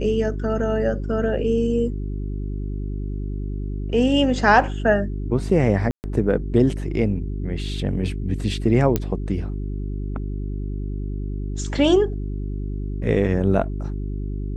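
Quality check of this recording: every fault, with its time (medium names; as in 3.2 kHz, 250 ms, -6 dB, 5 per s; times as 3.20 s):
hum 50 Hz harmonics 8 -27 dBFS
5.91–6.04 s: dropout 129 ms
8.96 s: pop -7 dBFS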